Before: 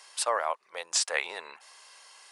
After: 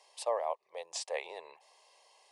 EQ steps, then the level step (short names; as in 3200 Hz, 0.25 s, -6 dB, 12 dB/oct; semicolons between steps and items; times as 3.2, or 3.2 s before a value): high shelf 2300 Hz -11.5 dB; high shelf 6700 Hz -5 dB; fixed phaser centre 590 Hz, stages 4; 0.0 dB